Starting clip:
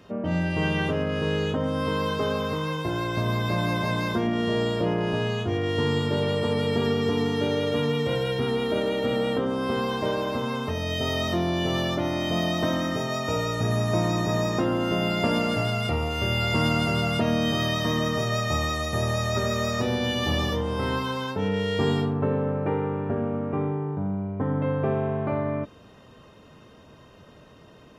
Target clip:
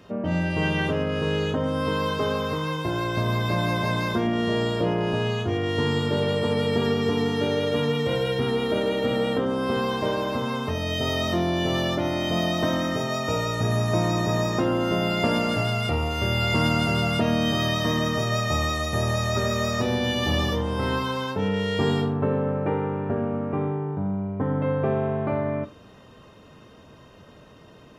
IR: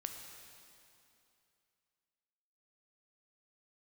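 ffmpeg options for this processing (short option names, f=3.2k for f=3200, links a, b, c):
-filter_complex "[0:a]asplit=2[a][b];[1:a]atrim=start_sample=2205,atrim=end_sample=3528[c];[b][c]afir=irnorm=-1:irlink=0,volume=3.5dB[d];[a][d]amix=inputs=2:normalize=0,volume=-5dB"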